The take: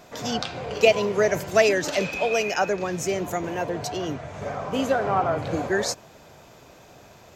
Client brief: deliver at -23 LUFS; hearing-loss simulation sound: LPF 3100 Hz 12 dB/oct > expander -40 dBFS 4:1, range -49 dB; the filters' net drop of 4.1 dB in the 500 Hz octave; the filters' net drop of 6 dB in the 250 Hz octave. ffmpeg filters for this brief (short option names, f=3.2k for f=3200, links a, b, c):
-af "lowpass=3.1k,equalizer=f=250:t=o:g=-7.5,equalizer=f=500:t=o:g=-3.5,agate=range=-49dB:threshold=-40dB:ratio=4,volume=4.5dB"